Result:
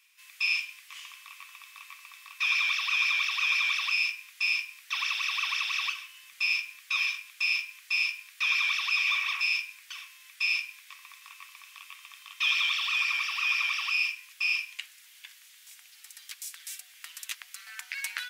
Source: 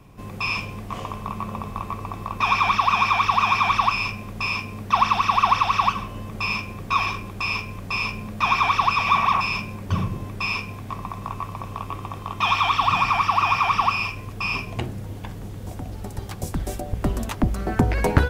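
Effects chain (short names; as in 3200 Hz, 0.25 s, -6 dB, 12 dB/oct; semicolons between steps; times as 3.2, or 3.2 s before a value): inverse Chebyshev high-pass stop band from 450 Hz, stop band 70 dB; 5.21–6.81 crackle 38/s -50 dBFS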